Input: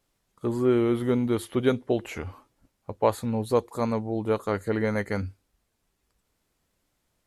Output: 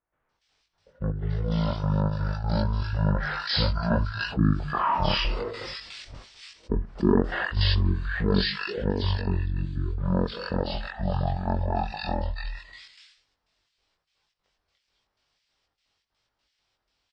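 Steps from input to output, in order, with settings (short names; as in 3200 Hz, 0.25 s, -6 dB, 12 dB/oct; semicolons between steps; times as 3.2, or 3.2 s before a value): Doppler pass-by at 2.49, 8 m/s, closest 3.9 m; HPF 49 Hz; expander -55 dBFS; passive tone stack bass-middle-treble 5-5-5; wide varispeed 0.424×; step gate ".xx.x.xxx.xxxx" 123 bpm -12 dB; chorus 0.92 Hz, delay 19 ms, depth 3.7 ms; bands offset in time lows, highs 0.29 s, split 1700 Hz; maximiser +33.5 dB; fast leveller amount 50%; gain -8.5 dB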